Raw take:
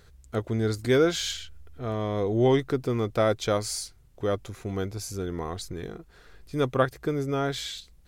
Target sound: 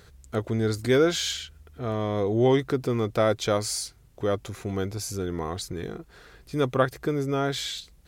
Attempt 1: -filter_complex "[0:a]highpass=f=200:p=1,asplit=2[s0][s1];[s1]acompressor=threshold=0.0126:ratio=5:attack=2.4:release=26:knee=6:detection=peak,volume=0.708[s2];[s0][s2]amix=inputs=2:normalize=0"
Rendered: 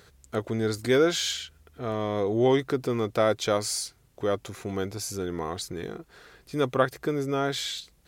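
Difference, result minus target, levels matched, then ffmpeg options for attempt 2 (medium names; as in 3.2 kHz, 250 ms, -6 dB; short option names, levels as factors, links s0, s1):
125 Hz band -3.5 dB
-filter_complex "[0:a]highpass=f=59:p=1,asplit=2[s0][s1];[s1]acompressor=threshold=0.0126:ratio=5:attack=2.4:release=26:knee=6:detection=peak,volume=0.708[s2];[s0][s2]amix=inputs=2:normalize=0"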